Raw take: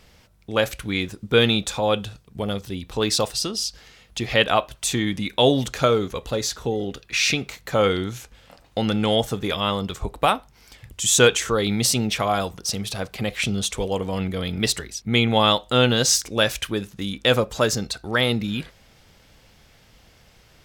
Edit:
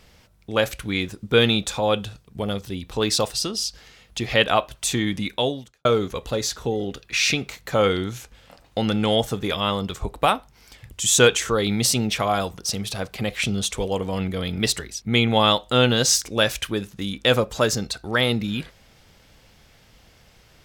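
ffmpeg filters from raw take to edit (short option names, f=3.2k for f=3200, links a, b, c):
-filter_complex "[0:a]asplit=2[a][b];[a]atrim=end=5.85,asetpts=PTS-STARTPTS,afade=t=out:st=5.28:d=0.57:c=qua[c];[b]atrim=start=5.85,asetpts=PTS-STARTPTS,afade=t=in:d=0.004:c=hsin[d];[c][d]concat=n=2:v=0:a=1"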